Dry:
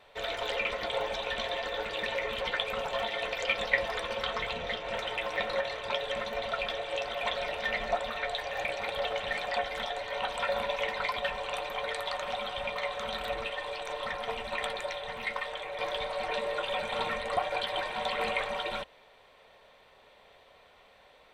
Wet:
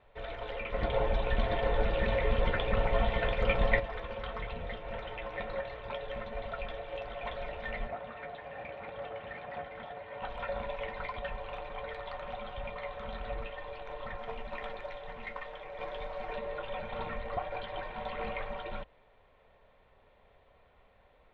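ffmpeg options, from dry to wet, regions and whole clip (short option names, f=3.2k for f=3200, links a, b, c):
-filter_complex "[0:a]asettb=1/sr,asplit=3[a][b][c];[a]atrim=end=0.744[d];[b]atrim=start=0.74:end=3.8,asetpts=PTS-STARTPTS,afade=t=in:d=0.004:c=qsin,afade=t=out:st=3.056:d=0.004:c=qsin,lowshelf=f=330:g=7.5,acontrast=29,aecho=1:1:689:0.631,atrim=end_sample=134946[e];[c]atrim=start=3.796[f];[d][e]acrossfade=d=0.004:c1=hsin:c2=qsin[g];[g][f]acrossfade=d=0.004:c1=qsin:c2=hsin,asettb=1/sr,asplit=3[h][i][j];[h]atrim=end=7.874[k];[i]atrim=start=7.87:end=10.22,asetpts=PTS-STARTPTS,afade=t=in:d=0.004:c=qsin,afade=t=out:st=2.346:d=0.004:c=qsin,aeval=exprs='(tanh(22.4*val(0)+0.4)-tanh(0.4))/22.4':c=same,highpass=110,lowpass=3.1k[l];[j]atrim=start=10.216[m];[k][l]acrossfade=d=0.004:c1=hsin:c2=qsin[n];[n][m]acrossfade=d=0.004:c1=qsin:c2=hsin,asettb=1/sr,asplit=3[o][p][q];[o]atrim=end=14.194[r];[p]atrim=start=14.19:end=16.33,asetpts=PTS-STARTPTS,afade=t=in:d=0.004:c=qsin,afade=t=out:st=2.136:d=0.004:c=qsin,equalizer=f=70:t=o:w=1.4:g=-9,acrusher=bits=3:mode=log:mix=0:aa=0.000001[s];[q]atrim=start=16.326[t];[r][s]acrossfade=d=0.004:c1=hsin:c2=qsin[u];[u][t]acrossfade=d=0.004:c1=qsin:c2=hsin,lowpass=3k,aemphasis=mode=reproduction:type=bsi,volume=-6.5dB"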